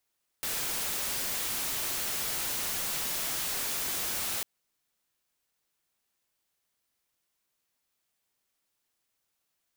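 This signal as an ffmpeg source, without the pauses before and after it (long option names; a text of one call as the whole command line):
ffmpeg -f lavfi -i "anoisesrc=color=white:amplitude=0.0411:duration=4:sample_rate=44100:seed=1" out.wav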